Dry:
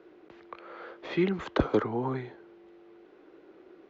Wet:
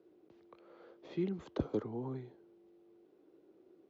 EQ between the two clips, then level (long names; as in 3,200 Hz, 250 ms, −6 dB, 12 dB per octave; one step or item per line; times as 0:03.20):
high-pass filter 74 Hz
parametric band 1,700 Hz −14.5 dB 2.5 octaves
−6.5 dB